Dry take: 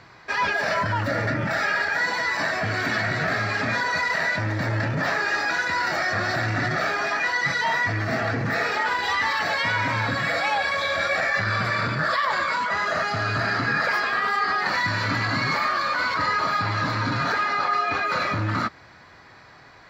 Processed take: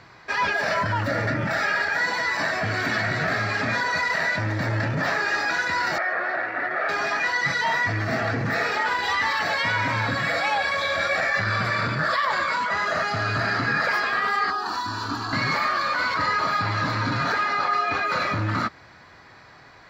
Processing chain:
0:05.98–0:06.89: Chebyshev band-pass filter 450–2,000 Hz, order 2
0:14.50–0:15.33: phaser with its sweep stopped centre 560 Hz, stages 6

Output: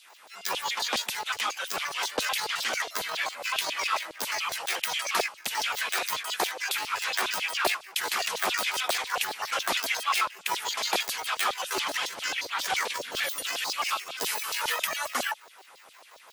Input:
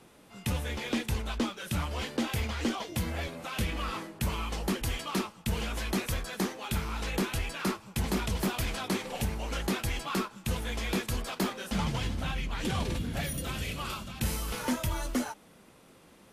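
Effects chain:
pitch shifter gated in a rhythm +11.5 semitones, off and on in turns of 88 ms
auto-filter high-pass saw down 7.3 Hz 560–4,300 Hz
level +6 dB

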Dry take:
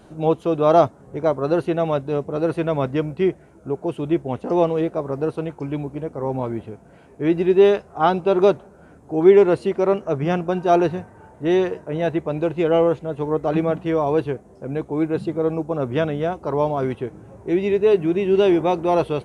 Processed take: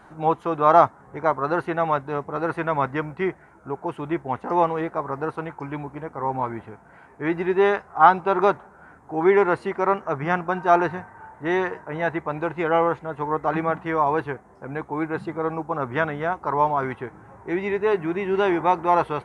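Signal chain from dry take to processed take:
flat-topped bell 1,300 Hz +13 dB
level −6 dB

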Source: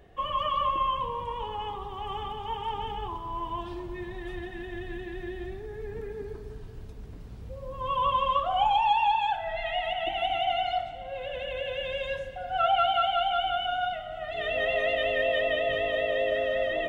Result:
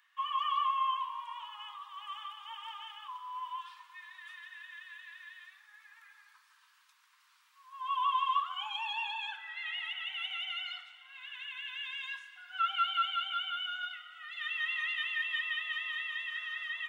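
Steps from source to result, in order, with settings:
Butterworth high-pass 1,000 Hz 72 dB per octave
level −3 dB

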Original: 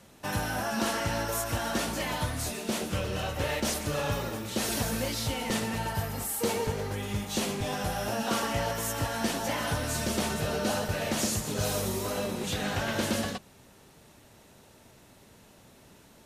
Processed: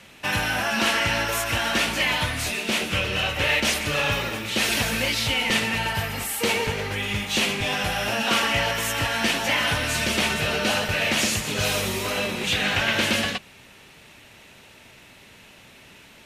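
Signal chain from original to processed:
parametric band 2,500 Hz +14 dB 1.4 octaves
level +2.5 dB

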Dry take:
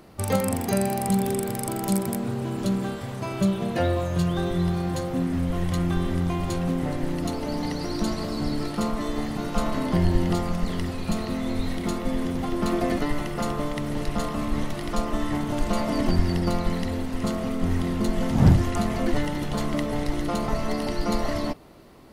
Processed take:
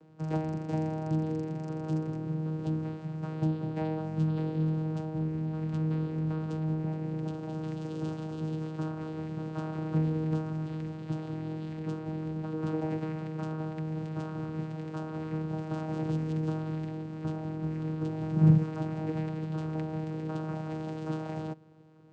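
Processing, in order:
channel vocoder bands 8, saw 157 Hz
level −5 dB

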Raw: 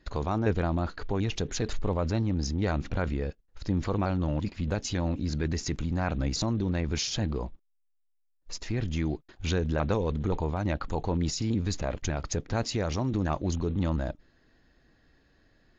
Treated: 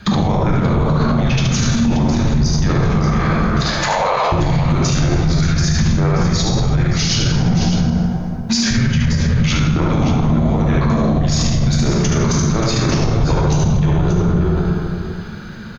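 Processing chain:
0:03.01–0:04.32: Butterworth high-pass 750 Hz 72 dB per octave
frequency shifter −240 Hz
dense smooth reverb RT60 1.7 s, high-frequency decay 0.55×, DRR −3 dB
downward compressor, threshold −32 dBFS, peak gain reduction 15 dB
on a send: multi-tap delay 73/580 ms −3.5/−10 dB
on the sum: boost into a limiter +30.5 dB
level −6.5 dB

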